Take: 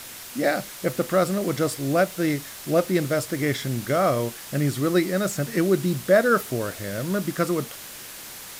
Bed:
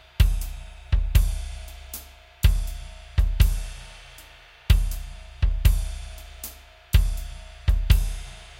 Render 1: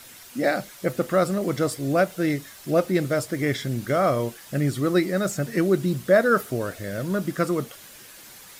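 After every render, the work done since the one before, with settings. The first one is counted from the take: denoiser 8 dB, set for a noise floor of -40 dBFS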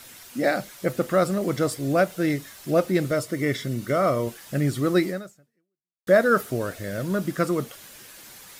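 3.11–4.27 notch comb 820 Hz; 5.09–6.07 fade out exponential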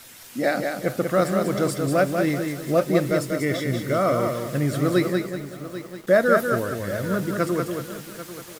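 feedback echo 0.191 s, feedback 34%, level -5 dB; lo-fi delay 0.791 s, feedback 35%, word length 6-bit, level -13 dB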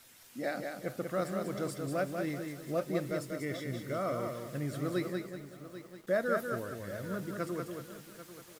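gain -13 dB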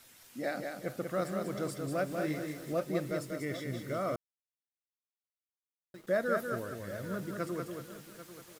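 2.07–2.73 doubler 39 ms -4 dB; 4.16–5.94 mute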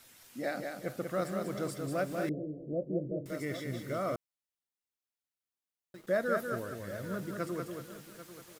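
2.29–3.26 steep low-pass 590 Hz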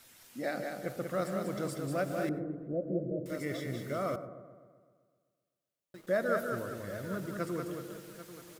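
dark delay 0.128 s, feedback 60%, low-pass 980 Hz, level -11.5 dB; plate-style reverb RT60 0.66 s, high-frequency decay 0.25×, pre-delay 80 ms, DRR 16 dB

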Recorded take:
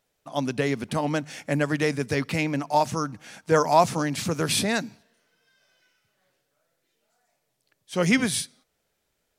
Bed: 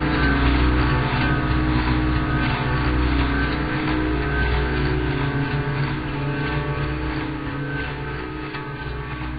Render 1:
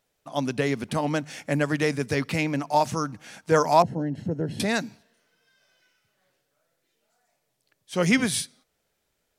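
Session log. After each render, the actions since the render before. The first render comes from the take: 3.82–4.6 running mean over 37 samples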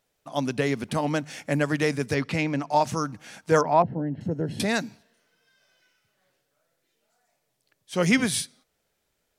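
2.14–2.87 air absorption 51 m; 3.61–4.21 air absorption 410 m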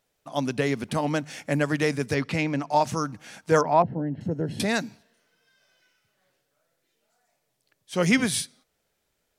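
nothing audible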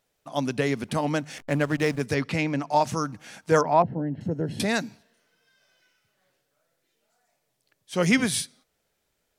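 1.38–2.01 backlash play -31.5 dBFS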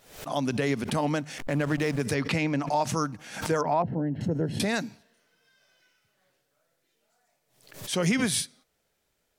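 limiter -16 dBFS, peak gain reduction 8.5 dB; backwards sustainer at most 98 dB/s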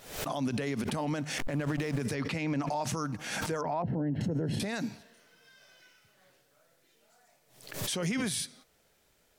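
in parallel at +1 dB: compressor, threshold -36 dBFS, peak gain reduction 14.5 dB; on the sum: limiter -24 dBFS, peak gain reduction 11.5 dB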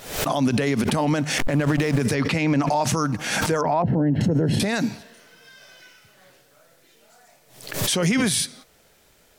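gain +11 dB

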